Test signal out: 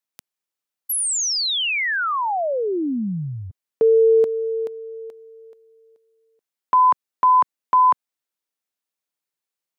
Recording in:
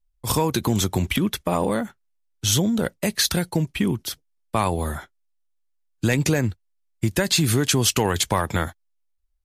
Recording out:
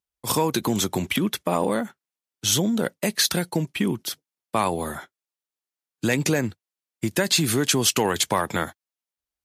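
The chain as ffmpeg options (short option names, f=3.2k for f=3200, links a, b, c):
-af "highpass=170"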